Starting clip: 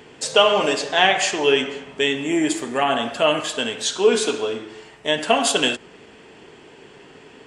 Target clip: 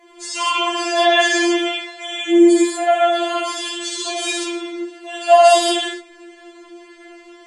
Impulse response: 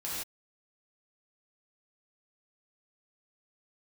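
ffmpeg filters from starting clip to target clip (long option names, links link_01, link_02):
-filter_complex "[0:a]equalizer=frequency=2800:width=4.3:gain=-5.5[link_01];[1:a]atrim=start_sample=2205,asetrate=31311,aresample=44100[link_02];[link_01][link_02]afir=irnorm=-1:irlink=0,afftfilt=real='re*4*eq(mod(b,16),0)':imag='im*4*eq(mod(b,16),0)':win_size=2048:overlap=0.75,volume=-1dB"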